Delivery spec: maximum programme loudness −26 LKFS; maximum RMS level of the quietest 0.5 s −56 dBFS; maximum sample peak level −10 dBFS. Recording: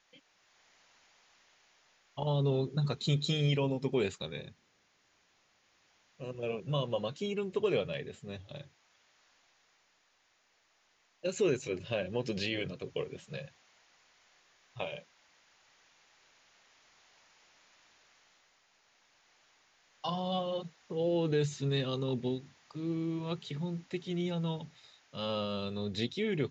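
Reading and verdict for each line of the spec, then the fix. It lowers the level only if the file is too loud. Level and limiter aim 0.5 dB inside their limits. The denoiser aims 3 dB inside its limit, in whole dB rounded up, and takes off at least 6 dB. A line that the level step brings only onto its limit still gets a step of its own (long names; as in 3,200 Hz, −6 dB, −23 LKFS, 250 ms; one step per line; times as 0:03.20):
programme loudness −34.5 LKFS: in spec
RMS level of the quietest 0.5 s −72 dBFS: in spec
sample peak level −18.5 dBFS: in spec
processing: no processing needed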